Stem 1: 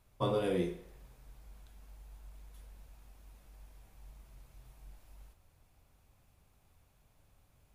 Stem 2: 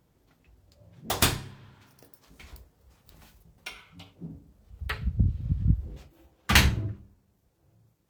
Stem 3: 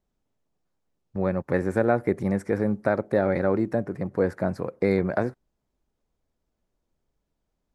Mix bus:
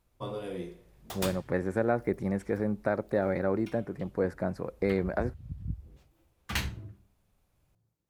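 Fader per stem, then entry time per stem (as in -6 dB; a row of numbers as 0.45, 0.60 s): -5.5, -12.5, -5.5 dB; 0.00, 0.00, 0.00 s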